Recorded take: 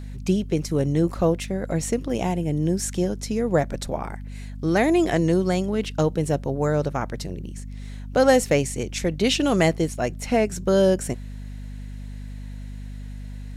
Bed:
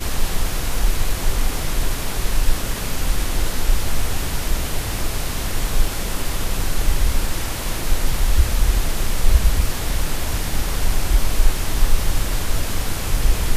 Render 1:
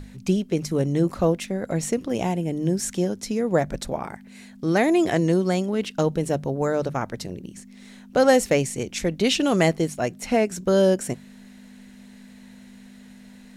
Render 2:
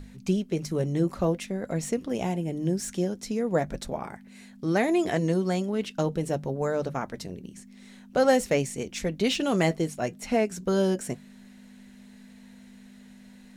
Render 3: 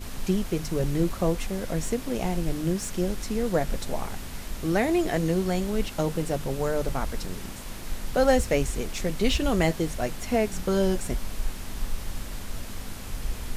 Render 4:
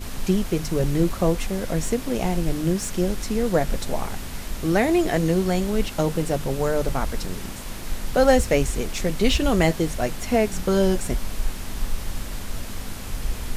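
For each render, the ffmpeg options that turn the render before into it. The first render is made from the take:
-af "bandreject=f=50:t=h:w=6,bandreject=f=100:t=h:w=6,bandreject=f=150:t=h:w=6"
-filter_complex "[0:a]flanger=delay=4.3:depth=1.1:regen=-68:speed=0.56:shape=sinusoidal,acrossover=split=3600[a][b];[b]asoftclip=type=tanh:threshold=-28.5dB[c];[a][c]amix=inputs=2:normalize=0"
-filter_complex "[1:a]volume=-14dB[a];[0:a][a]amix=inputs=2:normalize=0"
-af "volume=4dB"

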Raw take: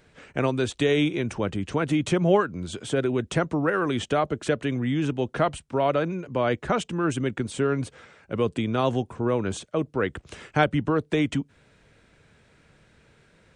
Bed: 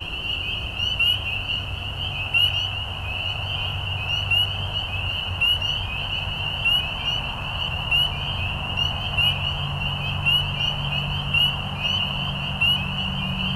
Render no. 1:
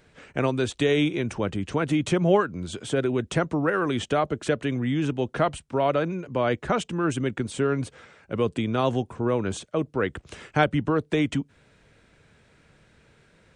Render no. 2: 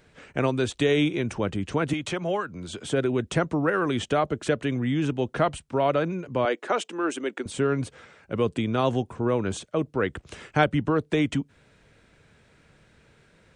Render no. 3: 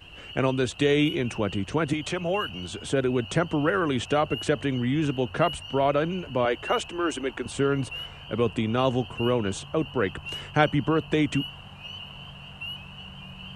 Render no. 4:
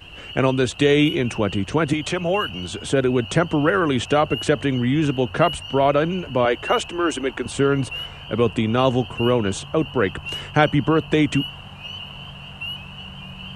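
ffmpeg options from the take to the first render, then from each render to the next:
-af anull
-filter_complex "[0:a]asettb=1/sr,asplit=3[a][b][c];[a]atrim=end=1.934[d];[b]atrim=start=1.93:end=2.86,asetpts=PTS-STARTPTS,afade=t=in:d=0.004:c=qsin,afade=t=out:st=0.926:d=0.004:c=qsin,acrossover=split=220|540|6300[e][f][g][h];[e]acompressor=threshold=-40dB:ratio=3[i];[f]acompressor=threshold=-37dB:ratio=3[j];[g]acompressor=threshold=-27dB:ratio=3[k];[h]acompressor=threshold=-46dB:ratio=3[l];[i][j][k][l]amix=inputs=4:normalize=0[m];[c]atrim=start=2.856[n];[d][m]acrossfade=d=0.004:c1=hsin:c2=qsin[o];[o][n]acrossfade=d=0.004:c1=qsin:c2=hsin,asettb=1/sr,asplit=3[p][q][r];[p]atrim=end=6.454[s];[q]atrim=start=6.45:end=7.46,asetpts=PTS-STARTPTS,afade=t=in:d=0.004:c=qsin,afade=t=out:st=1.006:d=0.004:c=qsin,highpass=f=300:w=0.5412,highpass=f=300:w=1.3066[t];[r]atrim=start=7.456[u];[s][t]acrossfade=d=0.004:c1=hsin:c2=qsin[v];[v][u]acrossfade=d=0.004:c1=qsin:c2=hsin"
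-filter_complex "[1:a]volume=-16.5dB[a];[0:a][a]amix=inputs=2:normalize=0"
-af "volume=5.5dB,alimiter=limit=-3dB:level=0:latency=1"

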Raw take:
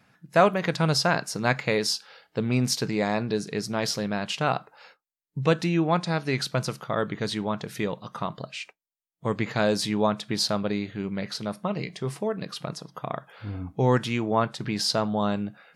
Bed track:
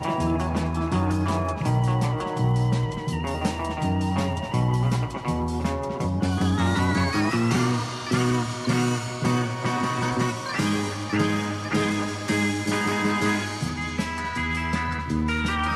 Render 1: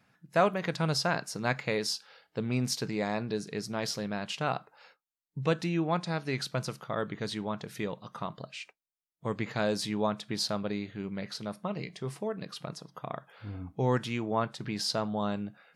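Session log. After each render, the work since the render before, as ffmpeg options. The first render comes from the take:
-af "volume=-6dB"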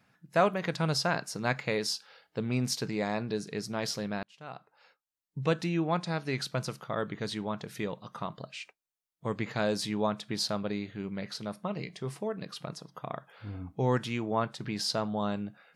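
-filter_complex "[0:a]asplit=2[a][b];[a]atrim=end=4.23,asetpts=PTS-STARTPTS,afade=t=out:st=4.226:d=0.004:c=hsin[c];[b]atrim=start=4.23,asetpts=PTS-STARTPTS,afade=t=in:d=1.16[d];[c][d]concat=n=2:v=0:a=1"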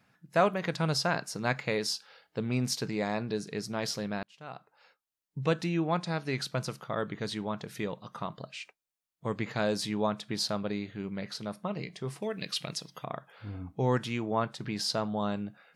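-filter_complex "[0:a]asettb=1/sr,asplit=3[a][b][c];[a]atrim=end=12.224[d];[b]atrim=start=12.22:end=13.04,asetpts=PTS-STARTPTS,afade=t=in:d=0.004:c=qsin,afade=t=out:st=0.816:d=0.004:c=qsin,highshelf=f=1.7k:t=q:w=1.5:g=9[e];[c]atrim=start=13.036[f];[d][e]acrossfade=d=0.004:c1=hsin:c2=qsin[g];[g][f]acrossfade=d=0.004:c1=qsin:c2=hsin"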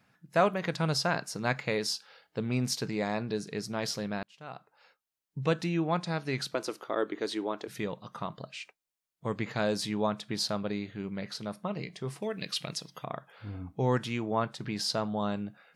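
-filter_complex "[0:a]asettb=1/sr,asplit=3[a][b][c];[a]atrim=end=6.544[d];[b]atrim=start=6.54:end=7.68,asetpts=PTS-STARTPTS,afade=t=in:d=0.004:c=qsin,afade=t=out:st=1.136:d=0.004:c=qsin,lowshelf=f=220:t=q:w=3:g=-13[e];[c]atrim=start=7.676[f];[d][e]acrossfade=d=0.004:c1=hsin:c2=qsin[g];[g][f]acrossfade=d=0.004:c1=qsin:c2=hsin"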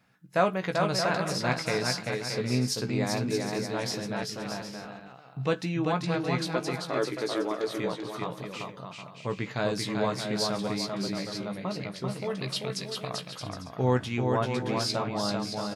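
-filter_complex "[0:a]asplit=2[a][b];[b]adelay=16,volume=-7.5dB[c];[a][c]amix=inputs=2:normalize=0,aecho=1:1:390|624|764.4|848.6|899.2:0.631|0.398|0.251|0.158|0.1"

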